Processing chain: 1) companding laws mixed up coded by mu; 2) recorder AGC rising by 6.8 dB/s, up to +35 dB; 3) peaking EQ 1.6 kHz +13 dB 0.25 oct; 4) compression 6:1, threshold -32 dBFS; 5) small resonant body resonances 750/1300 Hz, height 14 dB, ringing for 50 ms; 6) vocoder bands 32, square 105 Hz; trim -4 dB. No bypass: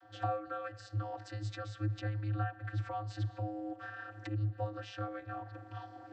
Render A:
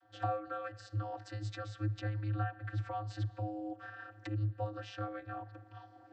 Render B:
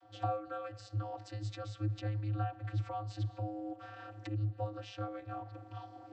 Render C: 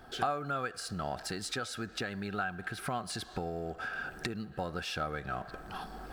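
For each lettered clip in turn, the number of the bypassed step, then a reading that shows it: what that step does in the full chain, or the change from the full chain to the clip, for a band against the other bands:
1, distortion -26 dB; 3, 2 kHz band -6.5 dB; 6, 125 Hz band -11.0 dB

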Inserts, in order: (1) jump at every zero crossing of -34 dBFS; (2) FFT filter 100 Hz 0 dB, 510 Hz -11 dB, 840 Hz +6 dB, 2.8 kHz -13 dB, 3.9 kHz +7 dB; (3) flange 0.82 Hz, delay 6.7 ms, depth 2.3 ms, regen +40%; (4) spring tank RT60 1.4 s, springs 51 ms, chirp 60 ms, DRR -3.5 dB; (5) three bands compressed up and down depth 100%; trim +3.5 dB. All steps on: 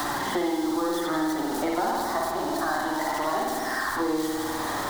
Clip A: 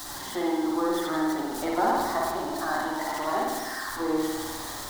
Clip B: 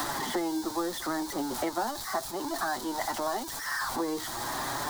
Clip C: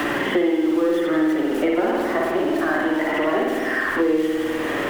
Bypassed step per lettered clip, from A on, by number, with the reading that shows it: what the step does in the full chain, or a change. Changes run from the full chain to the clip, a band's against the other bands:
5, crest factor change +2.5 dB; 4, 8 kHz band +5.0 dB; 2, crest factor change -1.5 dB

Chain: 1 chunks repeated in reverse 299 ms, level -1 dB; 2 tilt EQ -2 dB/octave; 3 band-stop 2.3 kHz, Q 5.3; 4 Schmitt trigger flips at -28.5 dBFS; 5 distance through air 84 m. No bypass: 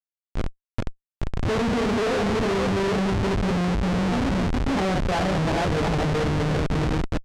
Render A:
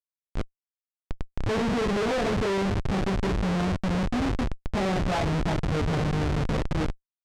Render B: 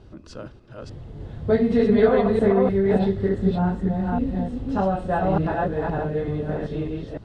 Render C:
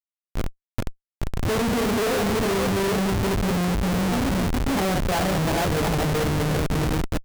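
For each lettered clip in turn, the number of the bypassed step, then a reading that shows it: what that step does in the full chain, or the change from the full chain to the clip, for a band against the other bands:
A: 1, loudness change -3.0 LU; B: 4, crest factor change +10.0 dB; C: 5, 8 kHz band +7.5 dB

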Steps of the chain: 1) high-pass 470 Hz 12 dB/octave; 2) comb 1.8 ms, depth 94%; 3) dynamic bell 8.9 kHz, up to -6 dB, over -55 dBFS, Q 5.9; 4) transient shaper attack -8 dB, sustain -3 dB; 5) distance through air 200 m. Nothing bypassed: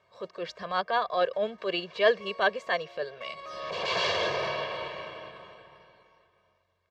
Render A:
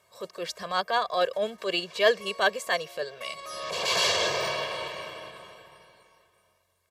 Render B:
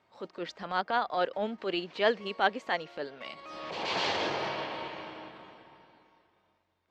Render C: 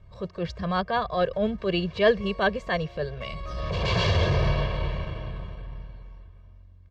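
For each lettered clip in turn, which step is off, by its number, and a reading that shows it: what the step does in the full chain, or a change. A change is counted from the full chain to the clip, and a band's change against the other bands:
5, 4 kHz band +4.5 dB; 2, 250 Hz band +6.0 dB; 1, 125 Hz band +21.5 dB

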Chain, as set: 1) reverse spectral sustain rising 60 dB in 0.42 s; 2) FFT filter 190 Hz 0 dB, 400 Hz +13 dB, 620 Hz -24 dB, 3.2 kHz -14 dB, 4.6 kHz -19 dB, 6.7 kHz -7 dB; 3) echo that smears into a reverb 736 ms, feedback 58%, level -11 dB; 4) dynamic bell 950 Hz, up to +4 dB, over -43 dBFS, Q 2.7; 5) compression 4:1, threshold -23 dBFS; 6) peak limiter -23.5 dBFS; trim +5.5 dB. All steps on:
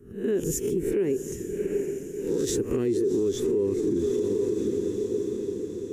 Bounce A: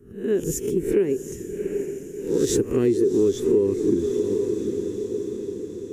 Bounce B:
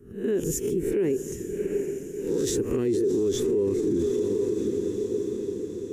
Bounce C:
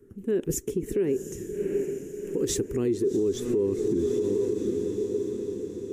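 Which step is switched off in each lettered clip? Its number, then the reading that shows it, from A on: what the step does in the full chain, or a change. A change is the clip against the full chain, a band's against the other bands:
6, mean gain reduction 1.5 dB; 5, mean gain reduction 2.0 dB; 1, 2 kHz band -1.5 dB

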